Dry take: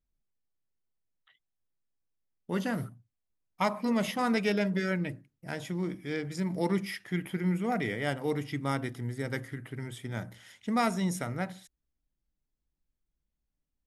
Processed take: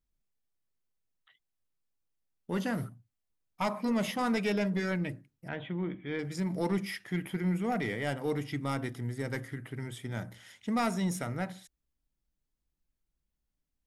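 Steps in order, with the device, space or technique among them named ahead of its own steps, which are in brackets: 5.48–6.19 s: elliptic low-pass 3.4 kHz, stop band 40 dB; saturation between pre-emphasis and de-emphasis (treble shelf 2 kHz +9 dB; saturation -20.5 dBFS, distortion -16 dB; treble shelf 2 kHz -9 dB)

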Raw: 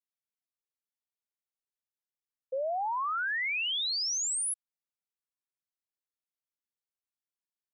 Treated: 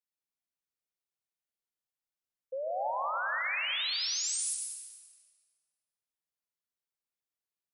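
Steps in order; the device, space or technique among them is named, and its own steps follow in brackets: stairwell (reverberation RT60 2.1 s, pre-delay 91 ms, DRR 0.5 dB); trim -4 dB

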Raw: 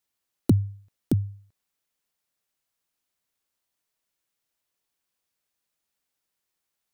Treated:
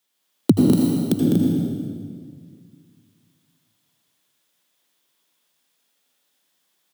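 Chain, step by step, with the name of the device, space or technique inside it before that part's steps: stadium PA (high-pass 150 Hz 24 dB/octave; peaking EQ 3.4 kHz +7 dB 0.33 oct; loudspeakers at several distances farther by 70 m -5 dB, 82 m -6 dB; reverberation RT60 1.9 s, pre-delay 76 ms, DRR -1.5 dB); 0.73–1.20 s: tilt EQ +1.5 dB/octave; trim +6.5 dB

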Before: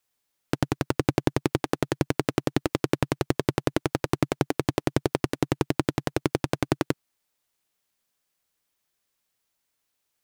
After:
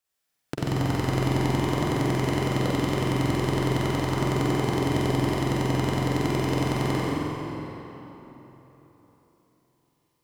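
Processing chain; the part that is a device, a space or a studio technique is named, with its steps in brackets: tunnel (flutter echo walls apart 8 m, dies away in 1 s; reverberation RT60 3.9 s, pre-delay 41 ms, DRR -5 dB); trim -7 dB

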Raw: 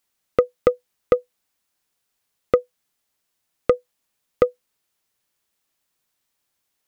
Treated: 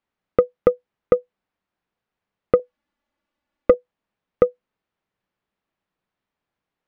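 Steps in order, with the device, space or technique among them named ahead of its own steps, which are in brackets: 2.59–3.74 s: comb 3.5 ms, depth 96%; phone in a pocket (low-pass 3.1 kHz 12 dB/octave; peaking EQ 190 Hz +5 dB 0.28 oct; treble shelf 2.1 kHz -9.5 dB); trim +1.5 dB

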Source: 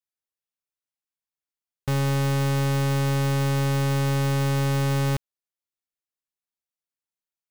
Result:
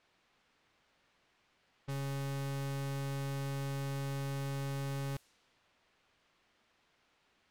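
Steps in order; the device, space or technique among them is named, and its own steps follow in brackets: expander -19 dBFS; cassette deck with a dynamic noise filter (white noise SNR 25 dB; level-controlled noise filter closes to 2.7 kHz, open at -29.5 dBFS); trim -8 dB

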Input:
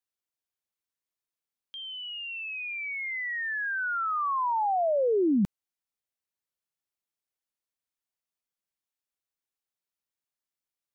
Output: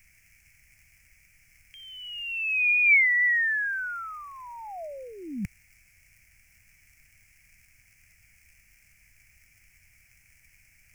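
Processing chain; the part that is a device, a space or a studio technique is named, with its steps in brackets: warped LP (warped record 33 1/3 rpm, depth 100 cents; crackle; pink noise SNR 32 dB); FFT filter 100 Hz 0 dB, 430 Hz -25 dB, 650 Hz -16 dB, 1.1 kHz -21 dB, 2.3 kHz +13 dB, 3.7 kHz -25 dB, 5.3 kHz +1 dB; trim +5 dB

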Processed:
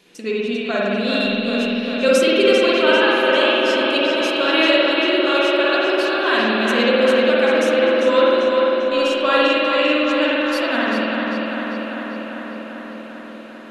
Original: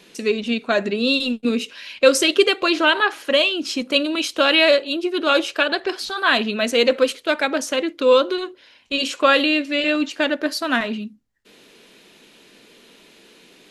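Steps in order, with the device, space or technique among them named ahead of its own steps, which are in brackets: dub delay into a spring reverb (filtered feedback delay 395 ms, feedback 75%, low-pass 4.9 kHz, level -4 dB; spring tank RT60 1.8 s, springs 50 ms, chirp 40 ms, DRR -5 dB); trim -6 dB

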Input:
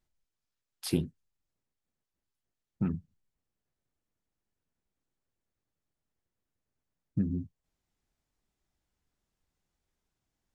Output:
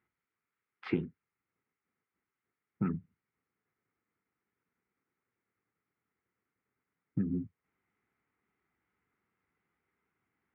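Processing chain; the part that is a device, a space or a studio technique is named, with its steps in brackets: bass amplifier (compression 4:1, threshold -30 dBFS, peak gain reduction 8 dB; cabinet simulation 85–2400 Hz, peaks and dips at 88 Hz -8 dB, 140 Hz -5 dB, 420 Hz +4 dB, 610 Hz -9 dB, 1.3 kHz +8 dB, 2.1 kHz +9 dB); trim +3.5 dB

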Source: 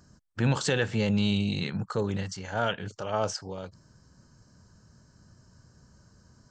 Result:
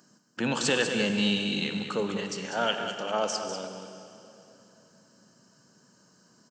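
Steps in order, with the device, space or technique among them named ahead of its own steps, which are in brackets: PA in a hall (high-pass 190 Hz 24 dB/octave; peaking EQ 2.9 kHz +7 dB 0.28 oct; delay 195 ms -8.5 dB; reverberation RT60 3.1 s, pre-delay 41 ms, DRR 8 dB); treble shelf 6.8 kHz +5.5 dB

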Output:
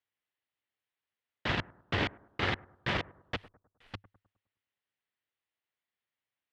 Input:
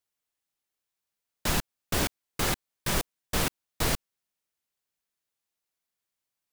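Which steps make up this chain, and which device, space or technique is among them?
3.36–3.94 s: inverse Chebyshev band-stop 110–2600 Hz, stop band 80 dB; analogue delay pedal into a guitar amplifier (bucket-brigade echo 103 ms, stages 1024, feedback 44%, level -22 dB; valve stage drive 19 dB, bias 0.65; cabinet simulation 81–3700 Hz, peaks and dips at 100 Hz +6 dB, 170 Hz -4 dB, 1.9 kHz +6 dB, 3 kHz +3 dB); trim +1 dB

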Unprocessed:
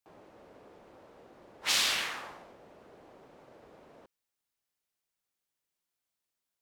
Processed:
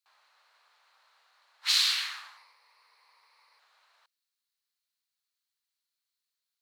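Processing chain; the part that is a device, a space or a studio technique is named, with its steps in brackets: 2.37–3.59 s: rippled EQ curve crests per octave 0.89, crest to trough 11 dB; headphones lying on a table (high-pass 1.1 kHz 24 dB/octave; peaking EQ 4.2 kHz +11 dB 0.37 oct); trim -2 dB

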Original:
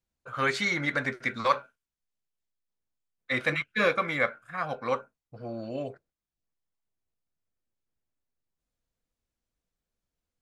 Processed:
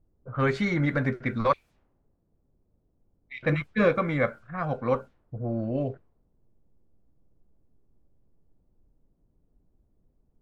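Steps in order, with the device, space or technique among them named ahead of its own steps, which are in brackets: 1.53–3.43 s: elliptic high-pass 2.2 kHz; cassette deck with a dynamic noise filter (white noise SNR 31 dB; level-controlled noise filter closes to 390 Hz, open at -27 dBFS); tilt EQ -4 dB/octave

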